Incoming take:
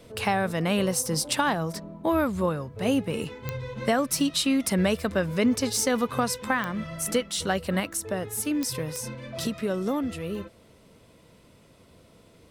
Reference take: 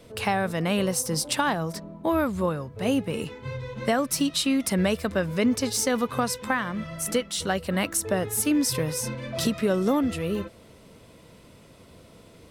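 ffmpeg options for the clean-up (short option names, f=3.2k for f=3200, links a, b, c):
-af "adeclick=t=4,asetnsamples=n=441:p=0,asendcmd='7.8 volume volume 4.5dB',volume=0dB"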